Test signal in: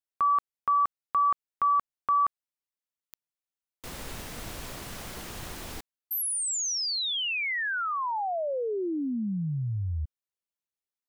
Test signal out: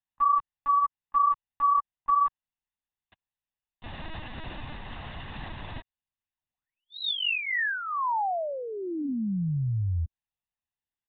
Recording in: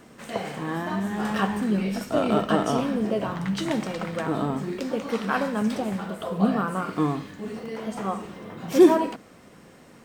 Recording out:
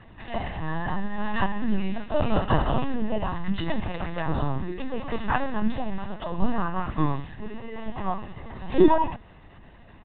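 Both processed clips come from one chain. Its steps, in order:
linear-prediction vocoder at 8 kHz pitch kept
comb filter 1.1 ms, depth 47%

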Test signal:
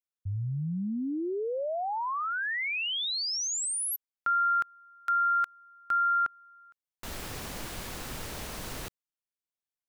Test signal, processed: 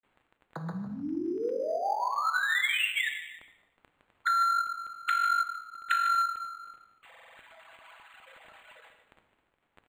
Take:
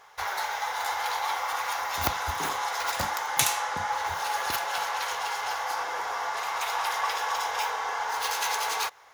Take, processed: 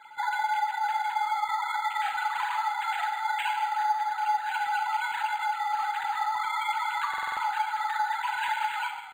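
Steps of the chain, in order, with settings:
three sine waves on the formant tracks
high-pass filter 260 Hz
comb filter 6.1 ms, depth 77%
downward compressor 4 to 1, threshold −33 dBFS
parametric band 2,300 Hz +11 dB 2.2 octaves
surface crackle 26 per second −40 dBFS
echo with shifted repeats 152 ms, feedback 34%, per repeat −35 Hz, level −13 dB
reverb whose tail is shaped and stops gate 320 ms falling, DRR 4.5 dB
buffer that repeats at 0:07.09, samples 2,048, times 5
linearly interpolated sample-rate reduction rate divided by 8×

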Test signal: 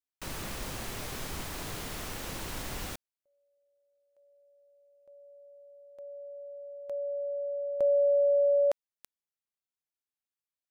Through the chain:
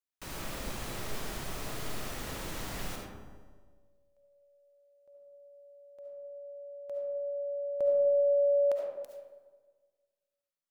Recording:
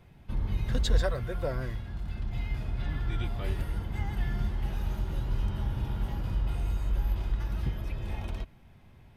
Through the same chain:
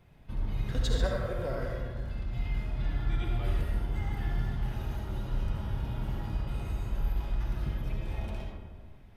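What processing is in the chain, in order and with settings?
tuned comb filter 140 Hz, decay 1.3 s, mix 60%
comb and all-pass reverb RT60 1.5 s, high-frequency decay 0.35×, pre-delay 30 ms, DRR −0.5 dB
level +3.5 dB

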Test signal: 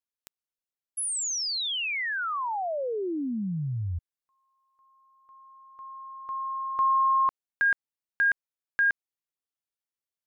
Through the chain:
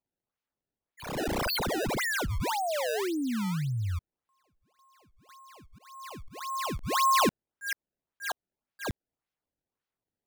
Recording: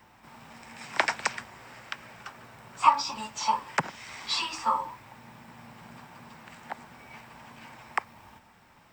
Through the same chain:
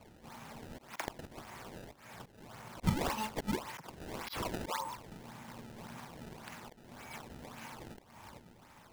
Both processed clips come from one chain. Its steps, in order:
sample-and-hold swept by an LFO 23×, swing 160% 1.8 Hz
volume swells 269 ms

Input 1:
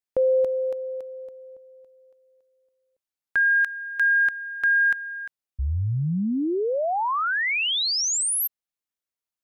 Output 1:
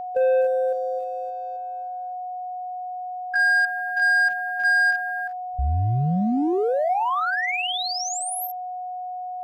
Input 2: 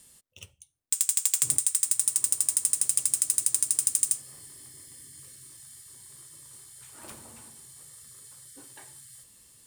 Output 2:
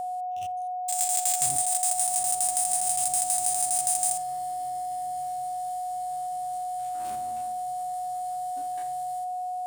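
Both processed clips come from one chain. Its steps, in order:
spectrum averaged block by block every 50 ms
leveller curve on the samples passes 1
steady tone 730 Hz −29 dBFS

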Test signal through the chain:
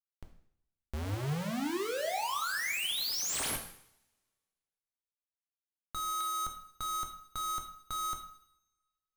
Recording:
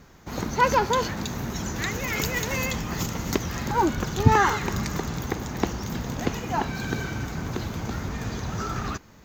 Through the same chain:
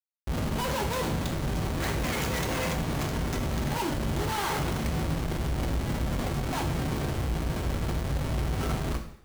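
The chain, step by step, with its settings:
comparator with hysteresis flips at −28.5 dBFS
coupled-rooms reverb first 0.65 s, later 1.8 s, from −26 dB, DRR 3 dB
level −4 dB

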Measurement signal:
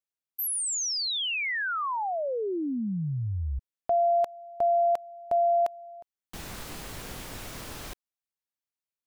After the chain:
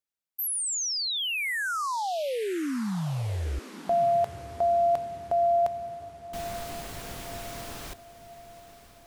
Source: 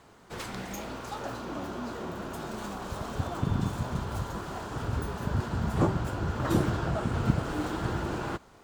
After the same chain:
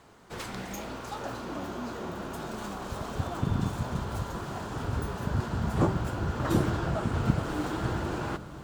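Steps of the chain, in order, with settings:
feedback delay with all-pass diffusion 1,061 ms, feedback 52%, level −14.5 dB

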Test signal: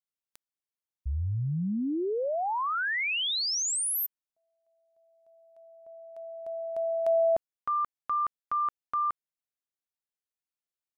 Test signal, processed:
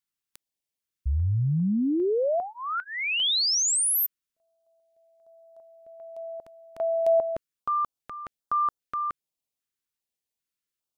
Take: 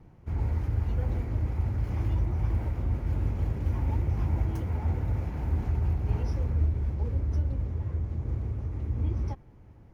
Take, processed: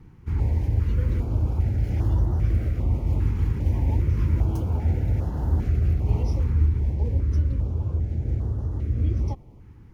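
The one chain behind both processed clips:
notch on a step sequencer 2.5 Hz 630–2,300 Hz
level +5.5 dB

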